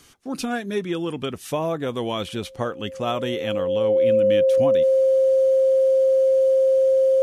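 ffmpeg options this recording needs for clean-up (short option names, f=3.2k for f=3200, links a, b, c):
-af "bandreject=f=530:w=30"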